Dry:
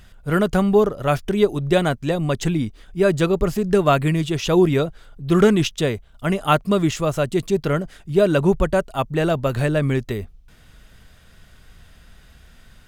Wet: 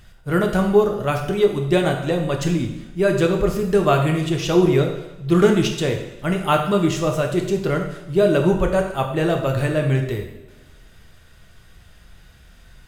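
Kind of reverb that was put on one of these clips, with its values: two-slope reverb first 0.83 s, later 2.1 s, DRR 2 dB; trim -2 dB

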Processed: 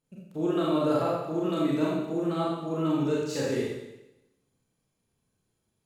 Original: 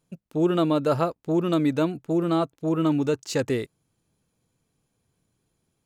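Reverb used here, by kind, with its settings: Schroeder reverb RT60 0.93 s, combs from 29 ms, DRR -6 dB; trim -10 dB

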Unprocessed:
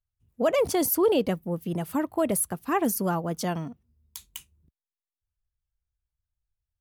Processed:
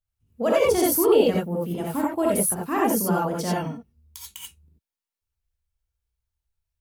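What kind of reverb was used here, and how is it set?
gated-style reverb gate 110 ms rising, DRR -4.5 dB; trim -2 dB

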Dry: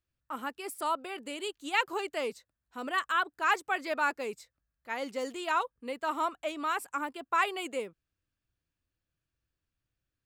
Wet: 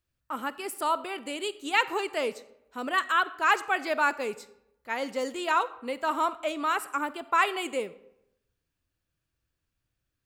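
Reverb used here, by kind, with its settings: algorithmic reverb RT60 0.84 s, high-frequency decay 0.65×, pre-delay 5 ms, DRR 15.5 dB; trim +4 dB

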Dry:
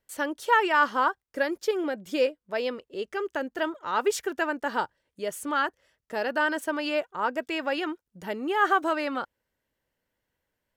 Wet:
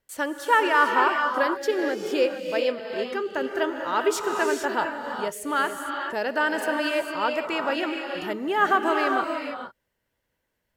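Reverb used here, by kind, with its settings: gated-style reverb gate 480 ms rising, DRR 3 dB; trim +1.5 dB

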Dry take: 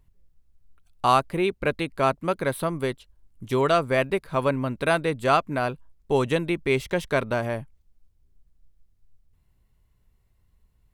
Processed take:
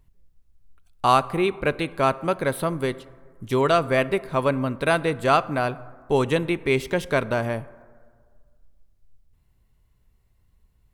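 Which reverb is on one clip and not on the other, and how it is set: plate-style reverb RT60 1.8 s, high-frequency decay 0.35×, DRR 17 dB; trim +1.5 dB

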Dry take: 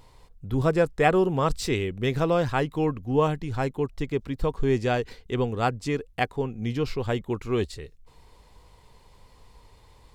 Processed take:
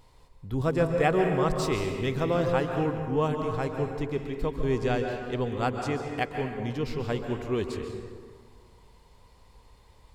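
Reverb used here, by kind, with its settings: plate-style reverb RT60 1.8 s, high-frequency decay 0.55×, pre-delay 120 ms, DRR 4 dB; trim -4 dB

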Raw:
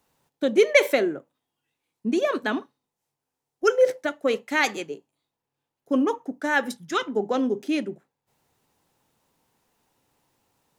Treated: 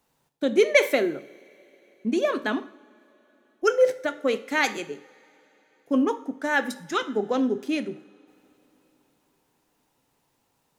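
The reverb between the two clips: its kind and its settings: two-slope reverb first 0.56 s, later 4 s, from -21 dB, DRR 12 dB; trim -1 dB

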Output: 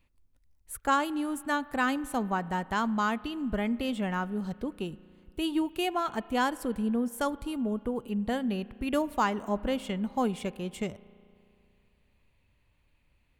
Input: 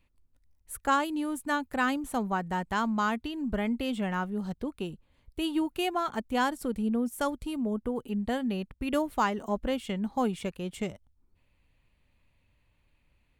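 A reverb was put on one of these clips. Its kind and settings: spring tank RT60 2.6 s, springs 34 ms, chirp 60 ms, DRR 19 dB

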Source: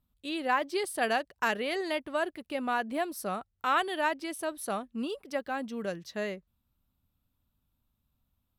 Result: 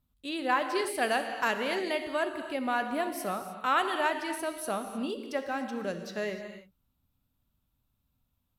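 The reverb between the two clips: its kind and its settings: gated-style reverb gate 330 ms flat, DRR 6 dB

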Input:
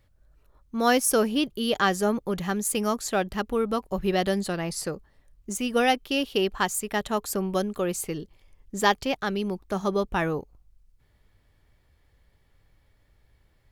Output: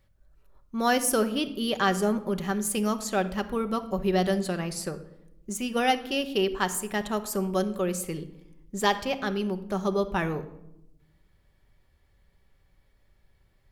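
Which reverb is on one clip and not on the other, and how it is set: simulated room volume 2800 m³, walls furnished, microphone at 1.1 m; trim -2.5 dB

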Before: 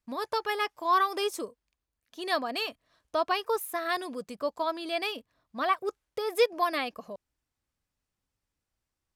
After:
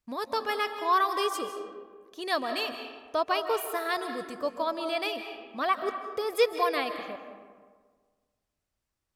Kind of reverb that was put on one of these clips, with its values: algorithmic reverb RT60 1.6 s, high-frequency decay 0.5×, pre-delay 115 ms, DRR 7.5 dB

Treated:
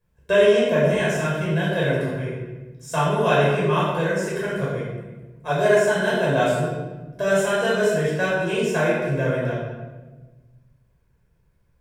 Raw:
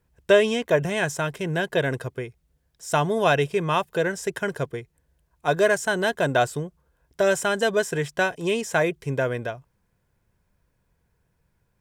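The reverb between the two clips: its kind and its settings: simulated room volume 850 m³, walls mixed, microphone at 5.4 m; trim -9.5 dB

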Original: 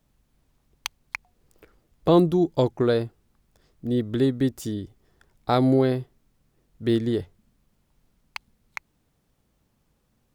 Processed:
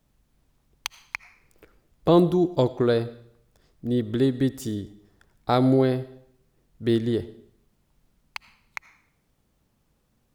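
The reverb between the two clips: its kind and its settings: algorithmic reverb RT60 0.69 s, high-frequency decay 0.95×, pre-delay 40 ms, DRR 16.5 dB

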